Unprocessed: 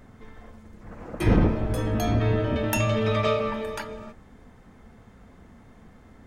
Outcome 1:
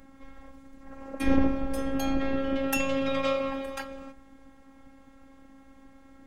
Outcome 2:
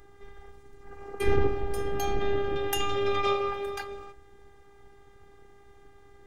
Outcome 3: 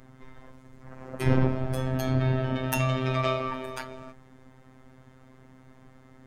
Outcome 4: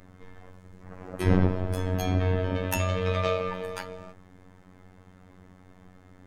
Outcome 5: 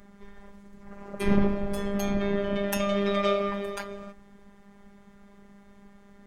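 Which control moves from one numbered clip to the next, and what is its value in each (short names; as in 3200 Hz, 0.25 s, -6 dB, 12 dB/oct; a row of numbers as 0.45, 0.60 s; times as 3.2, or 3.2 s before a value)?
robotiser, frequency: 270, 400, 130, 92, 200 Hz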